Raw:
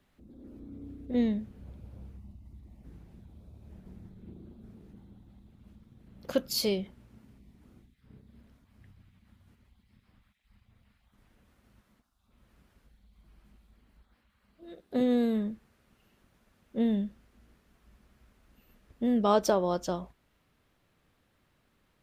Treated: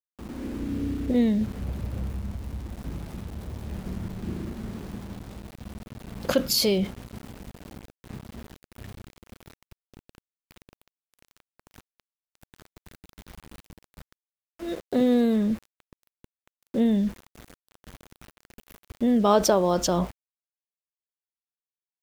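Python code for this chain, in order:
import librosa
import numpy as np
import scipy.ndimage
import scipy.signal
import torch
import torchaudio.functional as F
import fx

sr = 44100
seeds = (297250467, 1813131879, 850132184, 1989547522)

p1 = fx.over_compress(x, sr, threshold_db=-38.0, ratio=-1.0)
p2 = x + (p1 * librosa.db_to_amplitude(1.5))
p3 = np.where(np.abs(p2) >= 10.0 ** (-43.5 / 20.0), p2, 0.0)
y = p3 * librosa.db_to_amplitude(4.0)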